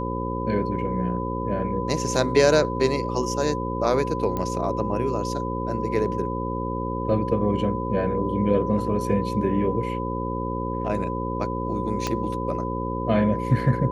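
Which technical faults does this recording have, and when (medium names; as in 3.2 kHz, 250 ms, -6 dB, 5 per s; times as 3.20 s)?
buzz 60 Hz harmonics 9 -29 dBFS
whine 1 kHz -30 dBFS
4.37 s: pop -15 dBFS
12.07 s: pop -11 dBFS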